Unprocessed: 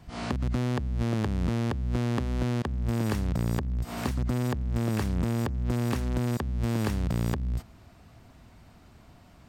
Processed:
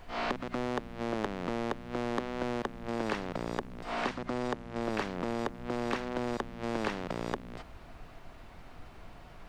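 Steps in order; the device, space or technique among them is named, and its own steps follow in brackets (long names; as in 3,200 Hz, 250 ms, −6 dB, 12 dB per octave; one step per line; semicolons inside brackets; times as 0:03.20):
aircraft cabin announcement (band-pass filter 430–3,300 Hz; soft clipping −26.5 dBFS, distortion −14 dB; brown noise bed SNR 12 dB)
0:03.90–0:04.82: low-pass filter 11,000 Hz 12 dB per octave
level +5.5 dB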